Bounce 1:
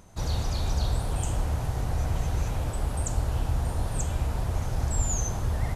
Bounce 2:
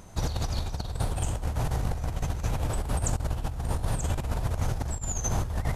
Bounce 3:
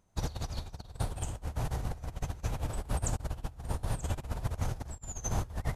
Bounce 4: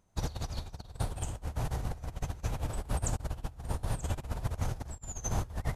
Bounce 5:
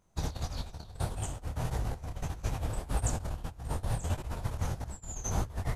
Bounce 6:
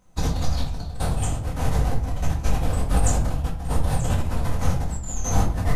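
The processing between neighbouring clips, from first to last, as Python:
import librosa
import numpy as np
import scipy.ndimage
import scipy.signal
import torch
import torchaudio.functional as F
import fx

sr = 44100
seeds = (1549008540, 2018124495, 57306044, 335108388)

y1 = fx.over_compress(x, sr, threshold_db=-29.0, ratio=-0.5)
y1 = F.gain(torch.from_numpy(y1), 1.5).numpy()
y2 = fx.upward_expand(y1, sr, threshold_db=-38.0, expansion=2.5)
y2 = F.gain(torch.from_numpy(y2), -1.5).numpy()
y3 = y2
y4 = fx.detune_double(y3, sr, cents=57)
y4 = F.gain(torch.from_numpy(y4), 4.5).numpy()
y5 = fx.room_shoebox(y4, sr, seeds[0], volume_m3=460.0, walls='furnished', distance_m=2.0)
y5 = F.gain(torch.from_numpy(y5), 7.0).numpy()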